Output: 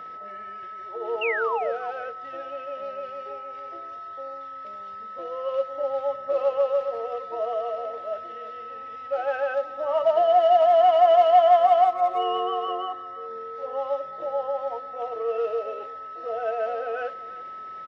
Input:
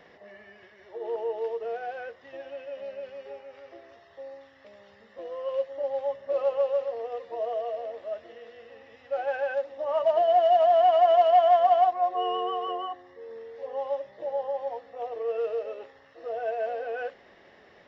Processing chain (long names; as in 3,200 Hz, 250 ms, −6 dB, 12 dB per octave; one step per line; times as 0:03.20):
steady tone 1,300 Hz −39 dBFS
sound drawn into the spectrogram fall, 0:01.21–0:01.72, 510–2,900 Hz −30 dBFS
far-end echo of a speakerphone 340 ms, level −18 dB
level +2.5 dB